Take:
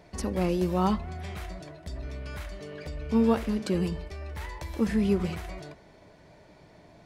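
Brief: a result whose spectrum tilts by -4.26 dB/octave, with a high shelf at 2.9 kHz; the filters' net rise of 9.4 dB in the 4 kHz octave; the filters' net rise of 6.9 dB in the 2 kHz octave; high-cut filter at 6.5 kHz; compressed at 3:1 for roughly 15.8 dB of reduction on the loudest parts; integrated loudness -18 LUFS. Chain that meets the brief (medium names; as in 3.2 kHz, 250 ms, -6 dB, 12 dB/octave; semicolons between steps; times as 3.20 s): low-pass 6.5 kHz; peaking EQ 2 kHz +4.5 dB; treble shelf 2.9 kHz +6 dB; peaking EQ 4 kHz +6.5 dB; compression 3:1, threshold -41 dBFS; trim +24 dB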